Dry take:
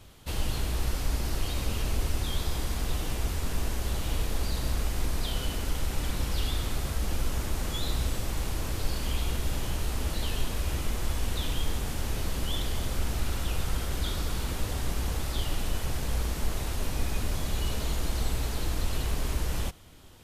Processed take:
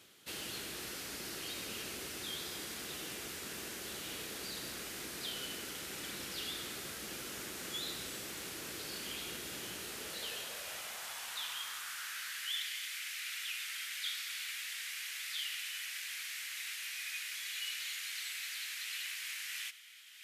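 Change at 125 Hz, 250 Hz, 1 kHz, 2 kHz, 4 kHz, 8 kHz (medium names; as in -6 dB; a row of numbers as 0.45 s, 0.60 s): -27.5 dB, -14.0 dB, -11.5 dB, -0.5 dB, -2.0 dB, -3.5 dB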